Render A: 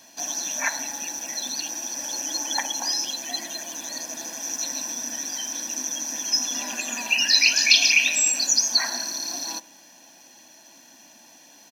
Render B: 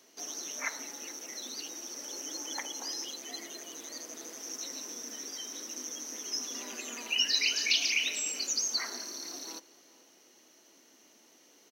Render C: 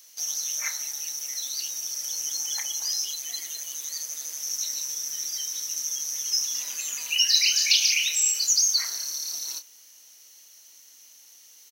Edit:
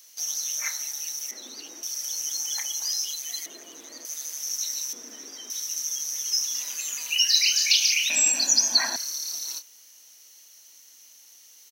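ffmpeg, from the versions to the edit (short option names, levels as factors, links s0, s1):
-filter_complex "[1:a]asplit=3[s0][s1][s2];[2:a]asplit=5[s3][s4][s5][s6][s7];[s3]atrim=end=1.312[s8];[s0]atrim=start=1.308:end=1.832[s9];[s4]atrim=start=1.828:end=3.462[s10];[s1]atrim=start=3.458:end=4.052[s11];[s5]atrim=start=4.048:end=4.932[s12];[s2]atrim=start=4.928:end=5.502[s13];[s6]atrim=start=5.498:end=8.102[s14];[0:a]atrim=start=8.098:end=8.962[s15];[s7]atrim=start=8.958[s16];[s8][s9]acrossfade=d=0.004:c1=hsin:c2=hsin[s17];[s17][s10]acrossfade=d=0.004:c1=hsin:c2=hsin[s18];[s18][s11]acrossfade=d=0.004:c1=hsin:c2=hsin[s19];[s19][s12]acrossfade=d=0.004:c1=hsin:c2=hsin[s20];[s20][s13]acrossfade=d=0.004:c1=hsin:c2=hsin[s21];[s21][s14]acrossfade=d=0.004:c1=hsin:c2=hsin[s22];[s22][s15]acrossfade=d=0.004:c1=hsin:c2=hsin[s23];[s23][s16]acrossfade=d=0.004:c1=hsin:c2=hsin"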